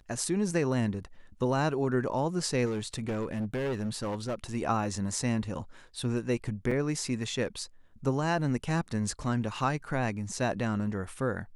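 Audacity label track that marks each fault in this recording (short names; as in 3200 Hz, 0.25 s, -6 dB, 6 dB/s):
2.650000	4.350000	clipped -28 dBFS
6.710000	6.710000	gap 4.3 ms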